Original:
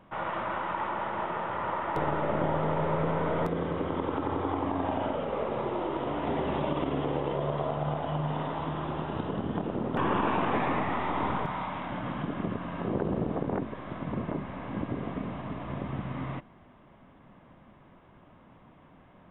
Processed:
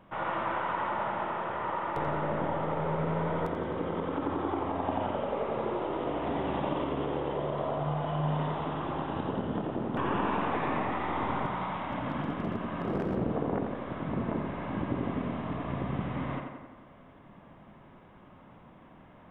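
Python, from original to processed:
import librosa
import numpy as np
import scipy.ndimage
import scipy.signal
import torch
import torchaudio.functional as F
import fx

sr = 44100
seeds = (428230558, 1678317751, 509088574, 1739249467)

p1 = fx.rider(x, sr, range_db=3, speed_s=2.0)
p2 = fx.overload_stage(p1, sr, gain_db=23.5, at=(11.74, 13.17))
p3 = p2 + fx.echo_tape(p2, sr, ms=87, feedback_pct=66, wet_db=-4, lp_hz=3500.0, drive_db=16.0, wow_cents=9, dry=0)
y = p3 * librosa.db_to_amplitude(-2.5)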